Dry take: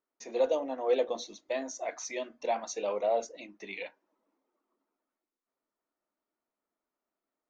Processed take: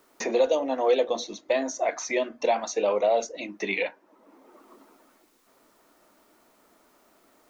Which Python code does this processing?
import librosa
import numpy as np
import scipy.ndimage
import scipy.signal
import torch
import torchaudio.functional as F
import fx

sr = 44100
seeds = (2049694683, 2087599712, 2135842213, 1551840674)

y = fx.band_squash(x, sr, depth_pct=70)
y = F.gain(torch.from_numpy(y), 7.5).numpy()